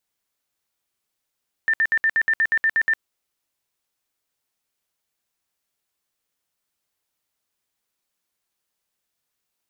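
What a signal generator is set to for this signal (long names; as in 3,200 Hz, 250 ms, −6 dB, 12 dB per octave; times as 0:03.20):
tone bursts 1,790 Hz, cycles 100, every 0.12 s, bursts 11, −15.5 dBFS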